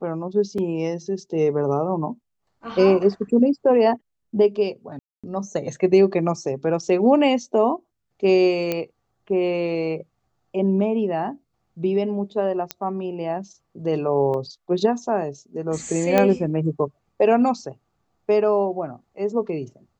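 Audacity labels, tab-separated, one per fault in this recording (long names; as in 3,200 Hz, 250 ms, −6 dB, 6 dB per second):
0.580000	0.580000	drop-out 3.8 ms
4.990000	5.240000	drop-out 246 ms
8.720000	8.720000	click −10 dBFS
12.710000	12.710000	click −9 dBFS
14.340000	14.340000	drop-out 2.3 ms
16.180000	16.180000	click −5 dBFS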